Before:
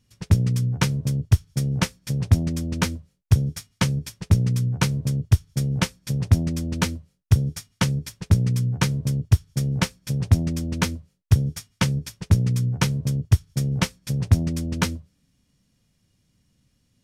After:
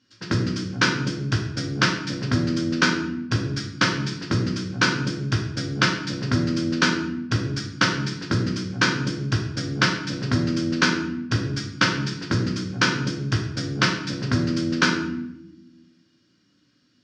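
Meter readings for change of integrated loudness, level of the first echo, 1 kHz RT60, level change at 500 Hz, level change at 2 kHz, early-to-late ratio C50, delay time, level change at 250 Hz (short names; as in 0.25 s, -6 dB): 0.0 dB, none, 0.75 s, +5.5 dB, +10.5 dB, 6.0 dB, none, +3.0 dB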